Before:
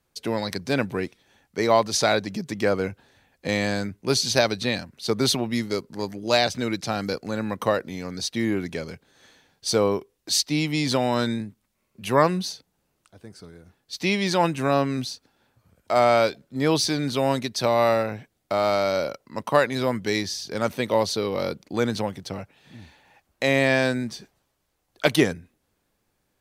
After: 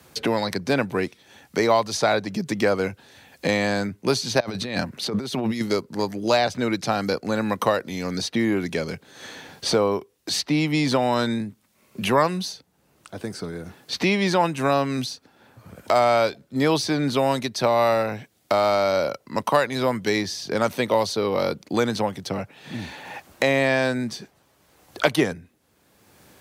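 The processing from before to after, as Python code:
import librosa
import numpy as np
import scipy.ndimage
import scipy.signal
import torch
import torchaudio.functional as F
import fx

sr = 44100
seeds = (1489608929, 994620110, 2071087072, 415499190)

y = fx.over_compress(x, sr, threshold_db=-32.0, ratio=-1.0, at=(4.4, 5.61))
y = scipy.signal.sosfilt(scipy.signal.butter(2, 76.0, 'highpass', fs=sr, output='sos'), y)
y = fx.dynamic_eq(y, sr, hz=900.0, q=0.95, threshold_db=-33.0, ratio=4.0, max_db=4)
y = fx.band_squash(y, sr, depth_pct=70)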